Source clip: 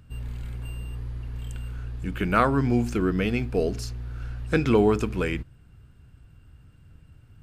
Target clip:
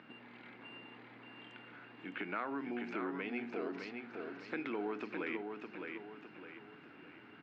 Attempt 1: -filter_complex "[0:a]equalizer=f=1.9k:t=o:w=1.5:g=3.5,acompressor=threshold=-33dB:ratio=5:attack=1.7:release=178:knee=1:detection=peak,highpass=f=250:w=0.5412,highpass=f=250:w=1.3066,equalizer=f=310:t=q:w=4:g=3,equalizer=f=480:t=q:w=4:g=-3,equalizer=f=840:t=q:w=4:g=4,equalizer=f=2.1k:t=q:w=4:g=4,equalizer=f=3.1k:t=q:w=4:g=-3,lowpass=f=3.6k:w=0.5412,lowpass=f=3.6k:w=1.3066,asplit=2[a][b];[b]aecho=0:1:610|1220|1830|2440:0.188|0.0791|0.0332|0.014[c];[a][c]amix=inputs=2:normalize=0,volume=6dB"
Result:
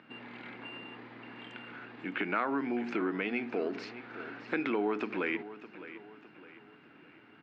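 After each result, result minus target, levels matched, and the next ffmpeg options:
compressor: peak gain reduction -8 dB; echo-to-direct -9.5 dB
-filter_complex "[0:a]equalizer=f=1.9k:t=o:w=1.5:g=3.5,acompressor=threshold=-43dB:ratio=5:attack=1.7:release=178:knee=1:detection=peak,highpass=f=250:w=0.5412,highpass=f=250:w=1.3066,equalizer=f=310:t=q:w=4:g=3,equalizer=f=480:t=q:w=4:g=-3,equalizer=f=840:t=q:w=4:g=4,equalizer=f=2.1k:t=q:w=4:g=4,equalizer=f=3.1k:t=q:w=4:g=-3,lowpass=f=3.6k:w=0.5412,lowpass=f=3.6k:w=1.3066,asplit=2[a][b];[b]aecho=0:1:610|1220|1830|2440:0.188|0.0791|0.0332|0.014[c];[a][c]amix=inputs=2:normalize=0,volume=6dB"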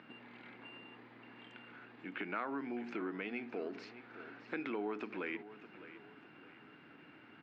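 echo-to-direct -9.5 dB
-filter_complex "[0:a]equalizer=f=1.9k:t=o:w=1.5:g=3.5,acompressor=threshold=-43dB:ratio=5:attack=1.7:release=178:knee=1:detection=peak,highpass=f=250:w=0.5412,highpass=f=250:w=1.3066,equalizer=f=310:t=q:w=4:g=3,equalizer=f=480:t=q:w=4:g=-3,equalizer=f=840:t=q:w=4:g=4,equalizer=f=2.1k:t=q:w=4:g=4,equalizer=f=3.1k:t=q:w=4:g=-3,lowpass=f=3.6k:w=0.5412,lowpass=f=3.6k:w=1.3066,asplit=2[a][b];[b]aecho=0:1:610|1220|1830|2440|3050:0.562|0.236|0.0992|0.0417|0.0175[c];[a][c]amix=inputs=2:normalize=0,volume=6dB"

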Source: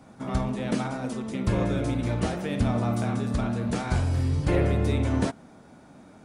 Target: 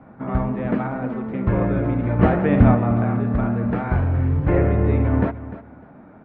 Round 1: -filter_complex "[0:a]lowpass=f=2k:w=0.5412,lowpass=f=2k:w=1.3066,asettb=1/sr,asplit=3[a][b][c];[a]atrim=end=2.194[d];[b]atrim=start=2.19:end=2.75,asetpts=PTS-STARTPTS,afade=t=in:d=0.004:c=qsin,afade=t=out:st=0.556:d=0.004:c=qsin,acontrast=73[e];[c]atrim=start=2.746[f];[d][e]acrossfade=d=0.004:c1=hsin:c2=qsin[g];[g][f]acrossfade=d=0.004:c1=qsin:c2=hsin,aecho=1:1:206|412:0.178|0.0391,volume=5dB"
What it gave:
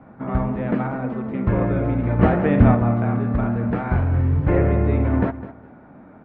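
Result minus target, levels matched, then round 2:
echo 94 ms early
-filter_complex "[0:a]lowpass=f=2k:w=0.5412,lowpass=f=2k:w=1.3066,asettb=1/sr,asplit=3[a][b][c];[a]atrim=end=2.194[d];[b]atrim=start=2.19:end=2.75,asetpts=PTS-STARTPTS,afade=t=in:d=0.004:c=qsin,afade=t=out:st=0.556:d=0.004:c=qsin,acontrast=73[e];[c]atrim=start=2.746[f];[d][e]acrossfade=d=0.004:c1=hsin:c2=qsin[g];[g][f]acrossfade=d=0.004:c1=qsin:c2=hsin,aecho=1:1:300|600:0.178|0.0391,volume=5dB"

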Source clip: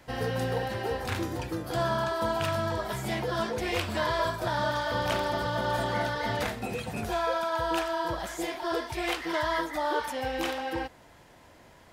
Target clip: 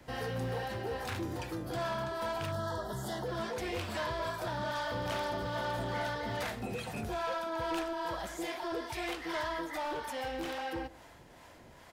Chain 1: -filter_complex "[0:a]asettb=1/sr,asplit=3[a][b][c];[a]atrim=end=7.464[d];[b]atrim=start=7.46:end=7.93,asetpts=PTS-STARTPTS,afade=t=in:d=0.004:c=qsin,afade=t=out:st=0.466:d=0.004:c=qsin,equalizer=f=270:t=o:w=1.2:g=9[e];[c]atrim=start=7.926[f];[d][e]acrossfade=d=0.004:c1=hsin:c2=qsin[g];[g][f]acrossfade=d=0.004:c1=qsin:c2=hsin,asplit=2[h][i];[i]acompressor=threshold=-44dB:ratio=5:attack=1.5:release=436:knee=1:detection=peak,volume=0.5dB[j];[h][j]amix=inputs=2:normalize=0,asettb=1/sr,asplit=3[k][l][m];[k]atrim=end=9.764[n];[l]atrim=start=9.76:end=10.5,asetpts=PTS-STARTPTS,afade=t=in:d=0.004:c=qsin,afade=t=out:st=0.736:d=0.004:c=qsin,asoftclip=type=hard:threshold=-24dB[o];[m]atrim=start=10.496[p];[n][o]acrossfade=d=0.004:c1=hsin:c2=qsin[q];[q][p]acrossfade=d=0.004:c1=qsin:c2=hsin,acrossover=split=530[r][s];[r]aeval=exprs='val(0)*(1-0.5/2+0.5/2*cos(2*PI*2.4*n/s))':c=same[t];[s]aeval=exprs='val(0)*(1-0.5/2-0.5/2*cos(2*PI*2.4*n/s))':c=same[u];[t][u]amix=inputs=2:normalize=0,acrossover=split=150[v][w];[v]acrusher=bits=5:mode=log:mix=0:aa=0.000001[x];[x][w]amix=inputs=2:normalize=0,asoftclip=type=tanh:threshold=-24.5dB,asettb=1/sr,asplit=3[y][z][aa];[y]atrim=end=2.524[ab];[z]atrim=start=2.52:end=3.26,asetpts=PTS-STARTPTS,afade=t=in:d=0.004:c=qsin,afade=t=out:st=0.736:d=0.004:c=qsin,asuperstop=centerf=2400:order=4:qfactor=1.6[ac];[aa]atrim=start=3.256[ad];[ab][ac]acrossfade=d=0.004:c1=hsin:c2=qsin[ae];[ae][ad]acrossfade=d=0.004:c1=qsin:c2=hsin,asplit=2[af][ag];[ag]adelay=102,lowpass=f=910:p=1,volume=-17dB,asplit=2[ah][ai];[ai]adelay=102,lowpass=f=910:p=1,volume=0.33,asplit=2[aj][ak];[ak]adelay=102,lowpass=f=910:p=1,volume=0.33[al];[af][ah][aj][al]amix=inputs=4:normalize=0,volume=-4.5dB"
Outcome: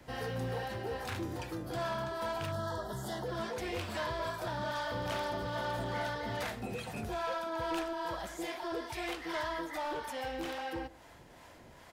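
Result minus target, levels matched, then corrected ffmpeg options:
compressor: peak gain reduction +7 dB
-filter_complex "[0:a]asettb=1/sr,asplit=3[a][b][c];[a]atrim=end=7.464[d];[b]atrim=start=7.46:end=7.93,asetpts=PTS-STARTPTS,afade=t=in:d=0.004:c=qsin,afade=t=out:st=0.466:d=0.004:c=qsin,equalizer=f=270:t=o:w=1.2:g=9[e];[c]atrim=start=7.926[f];[d][e]acrossfade=d=0.004:c1=hsin:c2=qsin[g];[g][f]acrossfade=d=0.004:c1=qsin:c2=hsin,asplit=2[h][i];[i]acompressor=threshold=-35.5dB:ratio=5:attack=1.5:release=436:knee=1:detection=peak,volume=0.5dB[j];[h][j]amix=inputs=2:normalize=0,asettb=1/sr,asplit=3[k][l][m];[k]atrim=end=9.764[n];[l]atrim=start=9.76:end=10.5,asetpts=PTS-STARTPTS,afade=t=in:d=0.004:c=qsin,afade=t=out:st=0.736:d=0.004:c=qsin,asoftclip=type=hard:threshold=-24dB[o];[m]atrim=start=10.496[p];[n][o]acrossfade=d=0.004:c1=hsin:c2=qsin[q];[q][p]acrossfade=d=0.004:c1=qsin:c2=hsin,acrossover=split=530[r][s];[r]aeval=exprs='val(0)*(1-0.5/2+0.5/2*cos(2*PI*2.4*n/s))':c=same[t];[s]aeval=exprs='val(0)*(1-0.5/2-0.5/2*cos(2*PI*2.4*n/s))':c=same[u];[t][u]amix=inputs=2:normalize=0,acrossover=split=150[v][w];[v]acrusher=bits=5:mode=log:mix=0:aa=0.000001[x];[x][w]amix=inputs=2:normalize=0,asoftclip=type=tanh:threshold=-24.5dB,asettb=1/sr,asplit=3[y][z][aa];[y]atrim=end=2.524[ab];[z]atrim=start=2.52:end=3.26,asetpts=PTS-STARTPTS,afade=t=in:d=0.004:c=qsin,afade=t=out:st=0.736:d=0.004:c=qsin,asuperstop=centerf=2400:order=4:qfactor=1.6[ac];[aa]atrim=start=3.256[ad];[ab][ac]acrossfade=d=0.004:c1=hsin:c2=qsin[ae];[ae][ad]acrossfade=d=0.004:c1=qsin:c2=hsin,asplit=2[af][ag];[ag]adelay=102,lowpass=f=910:p=1,volume=-17dB,asplit=2[ah][ai];[ai]adelay=102,lowpass=f=910:p=1,volume=0.33,asplit=2[aj][ak];[ak]adelay=102,lowpass=f=910:p=1,volume=0.33[al];[af][ah][aj][al]amix=inputs=4:normalize=0,volume=-4.5dB"

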